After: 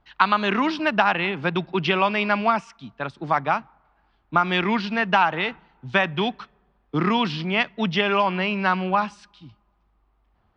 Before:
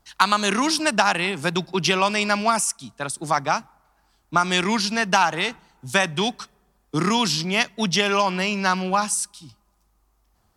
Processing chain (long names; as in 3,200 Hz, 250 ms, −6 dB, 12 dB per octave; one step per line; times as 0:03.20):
low-pass filter 3,200 Hz 24 dB per octave